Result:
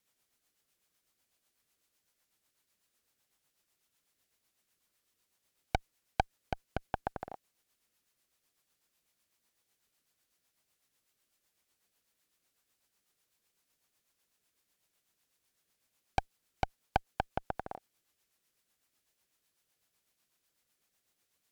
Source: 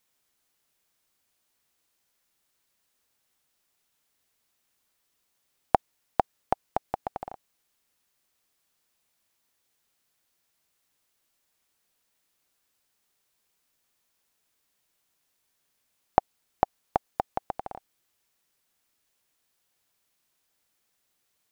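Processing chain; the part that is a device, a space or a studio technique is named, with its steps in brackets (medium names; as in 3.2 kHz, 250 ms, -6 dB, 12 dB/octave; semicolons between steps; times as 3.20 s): overdriven rotary cabinet (valve stage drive 21 dB, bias 0.8; rotary cabinet horn 8 Hz); trim +5 dB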